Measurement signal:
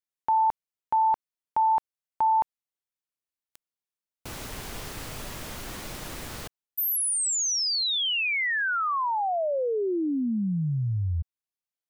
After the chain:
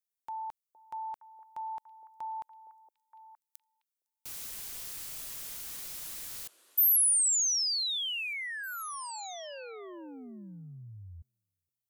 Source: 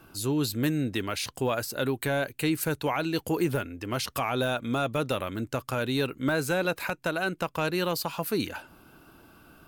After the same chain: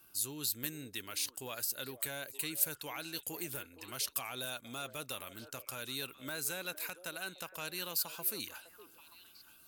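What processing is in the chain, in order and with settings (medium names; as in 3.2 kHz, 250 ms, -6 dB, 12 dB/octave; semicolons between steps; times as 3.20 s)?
pre-emphasis filter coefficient 0.9; repeats whose band climbs or falls 464 ms, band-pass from 470 Hz, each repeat 1.4 oct, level -10 dB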